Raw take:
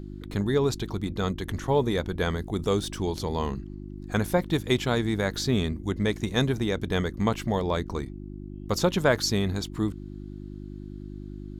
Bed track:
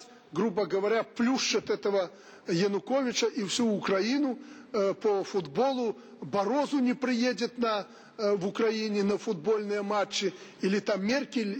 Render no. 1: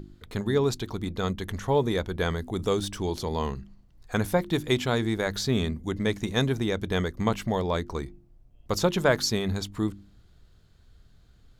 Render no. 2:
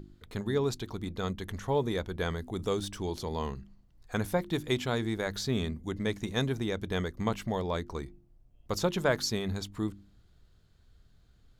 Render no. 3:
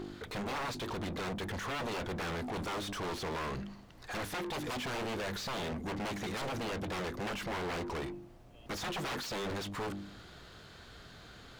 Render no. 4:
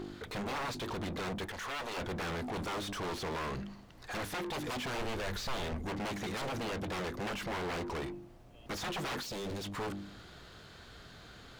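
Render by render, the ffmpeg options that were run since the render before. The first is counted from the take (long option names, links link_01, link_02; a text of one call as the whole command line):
ffmpeg -i in.wav -af "bandreject=frequency=50:width_type=h:width=4,bandreject=frequency=100:width_type=h:width=4,bandreject=frequency=150:width_type=h:width=4,bandreject=frequency=200:width_type=h:width=4,bandreject=frequency=250:width_type=h:width=4,bandreject=frequency=300:width_type=h:width=4,bandreject=frequency=350:width_type=h:width=4" out.wav
ffmpeg -i in.wav -af "volume=-5dB" out.wav
ffmpeg -i in.wav -filter_complex "[0:a]aeval=exprs='0.0251*(abs(mod(val(0)/0.0251+3,4)-2)-1)':channel_layout=same,asplit=2[link_01][link_02];[link_02]highpass=frequency=720:poles=1,volume=31dB,asoftclip=type=tanh:threshold=-32dB[link_03];[link_01][link_03]amix=inputs=2:normalize=0,lowpass=frequency=2800:poles=1,volume=-6dB" out.wav
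ffmpeg -i in.wav -filter_complex "[0:a]asettb=1/sr,asplit=3[link_01][link_02][link_03];[link_01]atrim=end=1.454[link_04];[link_02]atrim=start=1.45:end=1.97,asetpts=PTS-STARTPTS,afade=type=in:duration=0.004:curve=qsin,afade=type=out:start_time=0.516:duration=0.004:curve=qsin,equalizer=frequency=140:width=0.44:gain=-11.5[link_05];[link_03]atrim=start=1.966[link_06];[link_04][link_05]acrossfade=duration=0.004:curve1=hsin:curve2=qsin[link_07];[link_07][link_06]acrossfade=duration=0.004:curve1=qsin:curve2=hsin,asplit=3[link_08][link_09][link_10];[link_08]afade=type=out:start_time=4.98:duration=0.02[link_11];[link_09]asubboost=boost=4:cutoff=78,afade=type=in:start_time=4.98:duration=0.02,afade=type=out:start_time=5.86:duration=0.02[link_12];[link_10]afade=type=in:start_time=5.86:duration=0.02[link_13];[link_11][link_12][link_13]amix=inputs=3:normalize=0,asettb=1/sr,asplit=3[link_14][link_15][link_16];[link_14]atrim=end=9.234[link_17];[link_15]atrim=start=9.23:end=9.64,asetpts=PTS-STARTPTS,afade=type=in:duration=0.004:curve=qsin,afade=type=out:start_time=0.406:duration=0.004:curve=qsin,equalizer=frequency=1400:width_type=o:width=1.8:gain=-9.5[link_18];[link_16]atrim=start=9.636[link_19];[link_17][link_18]acrossfade=duration=0.004:curve1=hsin:curve2=qsin[link_20];[link_20][link_19]acrossfade=duration=0.004:curve1=qsin:curve2=hsin" out.wav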